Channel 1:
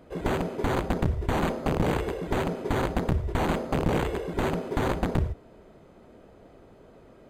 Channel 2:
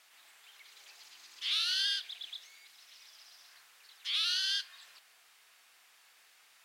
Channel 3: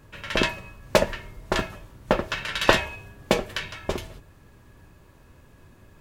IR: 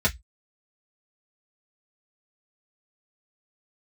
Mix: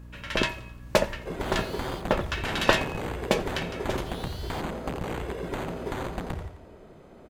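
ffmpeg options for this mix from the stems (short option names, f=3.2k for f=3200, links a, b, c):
-filter_complex "[0:a]acrossover=split=650|2600[a][b][c];[a]acompressor=threshold=-35dB:ratio=4[d];[b]acompressor=threshold=-39dB:ratio=4[e];[c]acompressor=threshold=-49dB:ratio=4[f];[d][e][f]amix=inputs=3:normalize=0,adelay=1150,volume=2dB,asplit=2[g][h];[h]volume=-10dB[i];[1:a]asoftclip=type=tanh:threshold=-36dB,acrusher=bits=6:mix=0:aa=0.5,volume=-9dB[j];[2:a]aeval=exprs='val(0)+0.01*(sin(2*PI*60*n/s)+sin(2*PI*2*60*n/s)/2+sin(2*PI*3*60*n/s)/3+sin(2*PI*4*60*n/s)/4+sin(2*PI*5*60*n/s)/5)':c=same,volume=-3dB,asplit=2[k][l];[l]volume=-21.5dB[m];[i][m]amix=inputs=2:normalize=0,aecho=0:1:87|174|261|348|435|522|609:1|0.47|0.221|0.104|0.0488|0.0229|0.0108[n];[g][j][k][n]amix=inputs=4:normalize=0"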